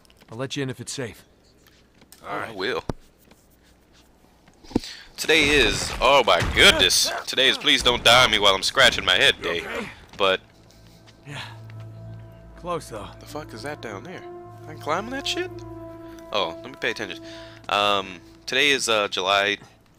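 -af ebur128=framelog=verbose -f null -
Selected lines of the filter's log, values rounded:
Integrated loudness:
  I:         -19.8 LUFS
  Threshold: -32.2 LUFS
Loudness range:
  LRA:        18.3 LU
  Threshold: -41.9 LUFS
  LRA low:   -34.6 LUFS
  LRA high:  -16.3 LUFS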